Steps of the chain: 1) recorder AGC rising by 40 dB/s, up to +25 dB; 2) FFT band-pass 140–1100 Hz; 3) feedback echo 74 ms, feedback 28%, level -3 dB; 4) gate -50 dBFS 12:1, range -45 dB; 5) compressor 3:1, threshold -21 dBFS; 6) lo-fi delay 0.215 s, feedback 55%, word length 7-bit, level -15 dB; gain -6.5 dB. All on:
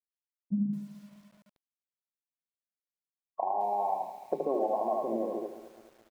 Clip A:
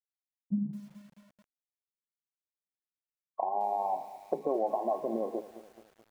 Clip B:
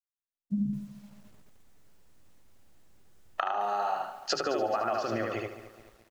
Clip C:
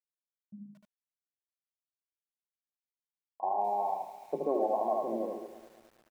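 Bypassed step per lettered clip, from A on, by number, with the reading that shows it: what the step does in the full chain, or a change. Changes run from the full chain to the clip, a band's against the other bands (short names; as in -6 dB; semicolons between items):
3, loudness change -1.0 LU; 2, crest factor change +2.0 dB; 1, momentary loudness spread change +5 LU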